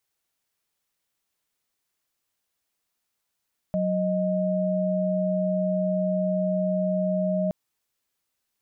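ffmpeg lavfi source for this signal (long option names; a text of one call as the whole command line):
ffmpeg -f lavfi -i "aevalsrc='0.0596*(sin(2*PI*185*t)+sin(2*PI*622.25*t))':duration=3.77:sample_rate=44100" out.wav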